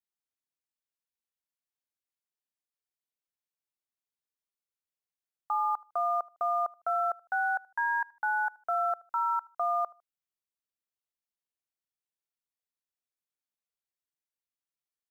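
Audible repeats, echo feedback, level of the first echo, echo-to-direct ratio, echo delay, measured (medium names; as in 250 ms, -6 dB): 2, 29%, -24.0 dB, -23.5 dB, 77 ms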